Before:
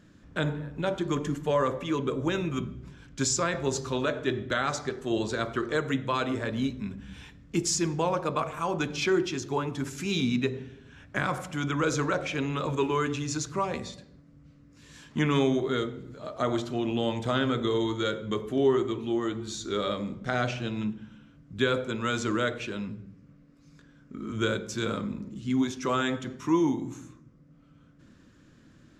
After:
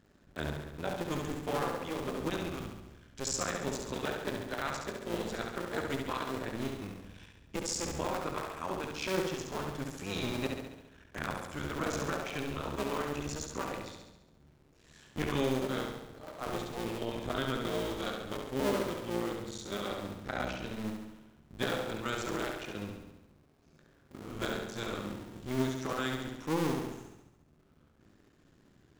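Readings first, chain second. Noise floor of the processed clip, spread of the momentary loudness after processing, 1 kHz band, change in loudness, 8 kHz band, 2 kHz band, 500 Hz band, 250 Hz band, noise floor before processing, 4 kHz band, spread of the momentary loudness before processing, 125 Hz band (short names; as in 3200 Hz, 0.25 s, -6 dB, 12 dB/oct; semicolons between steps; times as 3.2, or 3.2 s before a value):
-64 dBFS, 12 LU, -6.0 dB, -7.0 dB, -6.0 dB, -6.0 dB, -7.0 dB, -8.0 dB, -57 dBFS, -6.0 dB, 11 LU, -7.5 dB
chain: cycle switcher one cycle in 2, muted; flutter echo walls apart 11.8 m, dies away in 0.87 s; gain -6 dB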